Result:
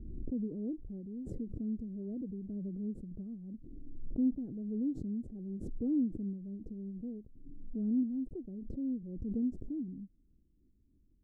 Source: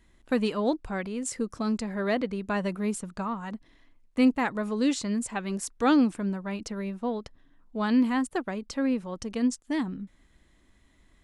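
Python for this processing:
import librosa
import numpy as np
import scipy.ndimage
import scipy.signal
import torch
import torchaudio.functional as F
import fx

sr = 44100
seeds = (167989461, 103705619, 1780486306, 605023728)

y = fx.cvsd(x, sr, bps=64000)
y = scipy.signal.sosfilt(scipy.signal.cheby2(4, 50, 920.0, 'lowpass', fs=sr, output='sos'), y)
y = fx.pre_swell(y, sr, db_per_s=37.0)
y = F.gain(torch.from_numpy(y), -8.5).numpy()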